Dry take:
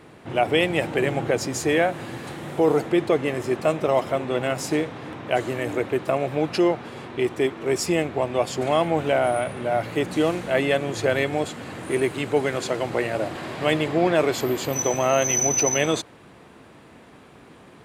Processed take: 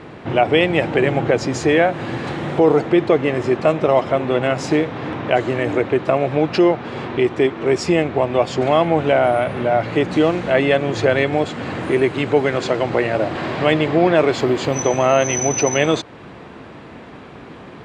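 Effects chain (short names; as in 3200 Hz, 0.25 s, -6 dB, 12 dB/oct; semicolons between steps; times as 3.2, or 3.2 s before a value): in parallel at +1.5 dB: compressor, threshold -31 dBFS, peak gain reduction 15.5 dB; on the sum: air absorption 120 m; gain +4 dB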